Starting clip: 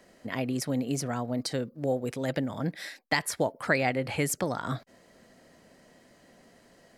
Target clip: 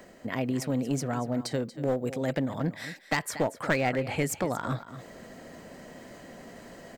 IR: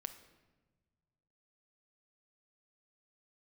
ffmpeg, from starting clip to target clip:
-filter_complex "[0:a]asplit=2[a][b];[b]acompressor=threshold=-43dB:ratio=6,volume=-1dB[c];[a][c]amix=inputs=2:normalize=0,equalizer=f=7.9k:w=0.42:g=-6.5,aecho=1:1:234:0.188,aeval=exprs='clip(val(0),-1,0.0531)':c=same,aexciter=amount=1.5:drive=2.8:freq=6.6k,areverse,acompressor=mode=upward:threshold=-38dB:ratio=2.5,areverse"

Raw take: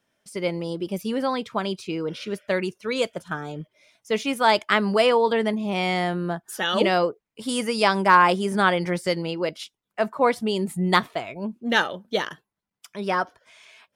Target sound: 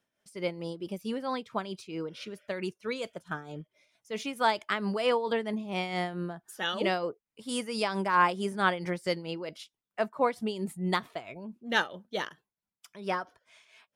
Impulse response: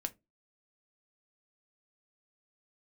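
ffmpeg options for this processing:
-af "tremolo=f=4.5:d=0.62,volume=-5.5dB"

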